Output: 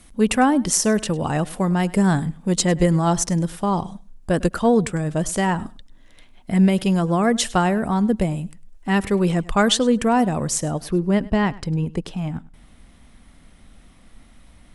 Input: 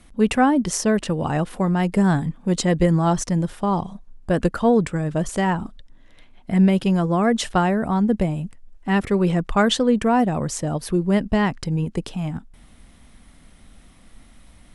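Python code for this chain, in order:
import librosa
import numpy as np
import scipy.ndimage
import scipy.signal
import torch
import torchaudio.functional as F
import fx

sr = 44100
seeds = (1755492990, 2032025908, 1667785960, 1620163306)

y = fx.high_shelf(x, sr, hz=5300.0, db=fx.steps((0.0, 9.5), (10.71, -3.5)))
y = fx.echo_feedback(y, sr, ms=102, feedback_pct=16, wet_db=-21.0)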